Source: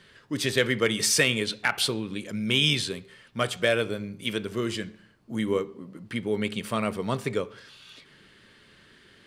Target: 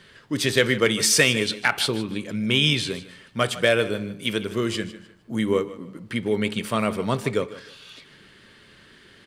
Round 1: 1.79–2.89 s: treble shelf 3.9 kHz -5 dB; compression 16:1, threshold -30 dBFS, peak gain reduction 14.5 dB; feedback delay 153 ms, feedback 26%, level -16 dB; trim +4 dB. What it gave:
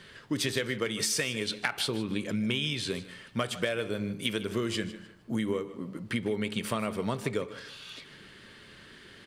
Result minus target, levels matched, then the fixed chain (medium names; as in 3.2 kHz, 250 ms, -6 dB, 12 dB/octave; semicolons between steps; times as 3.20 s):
compression: peak gain reduction +14.5 dB
1.79–2.89 s: treble shelf 3.9 kHz -5 dB; feedback delay 153 ms, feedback 26%, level -16 dB; trim +4 dB